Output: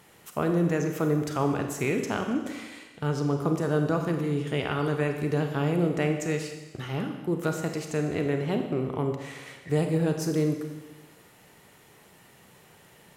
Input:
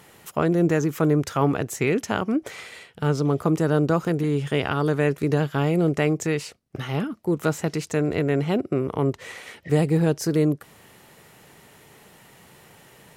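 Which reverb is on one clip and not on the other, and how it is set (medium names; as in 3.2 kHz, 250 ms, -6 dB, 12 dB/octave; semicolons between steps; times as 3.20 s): Schroeder reverb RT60 1.2 s, combs from 31 ms, DRR 4.5 dB; trim -5.5 dB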